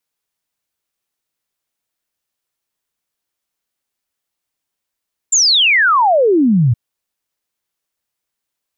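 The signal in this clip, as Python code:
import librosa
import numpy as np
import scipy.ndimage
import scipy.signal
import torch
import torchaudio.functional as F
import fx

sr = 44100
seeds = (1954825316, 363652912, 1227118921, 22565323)

y = fx.ess(sr, length_s=1.42, from_hz=7500.0, to_hz=110.0, level_db=-8.5)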